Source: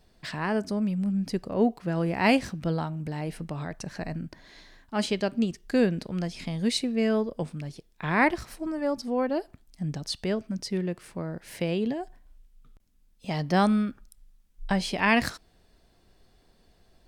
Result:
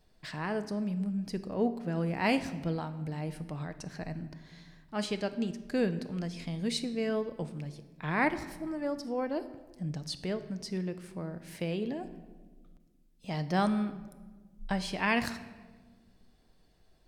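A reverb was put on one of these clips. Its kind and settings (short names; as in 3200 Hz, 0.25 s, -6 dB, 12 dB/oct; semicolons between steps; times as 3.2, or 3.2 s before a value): shoebox room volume 1200 m³, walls mixed, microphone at 0.52 m; gain -6 dB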